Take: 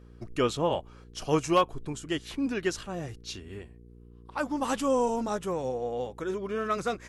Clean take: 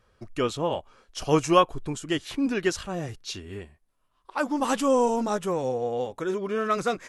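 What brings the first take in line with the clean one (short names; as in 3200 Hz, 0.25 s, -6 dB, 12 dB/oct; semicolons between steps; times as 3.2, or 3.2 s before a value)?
clip repair -14.5 dBFS; de-hum 59 Hz, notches 8; gain 0 dB, from 1.04 s +4 dB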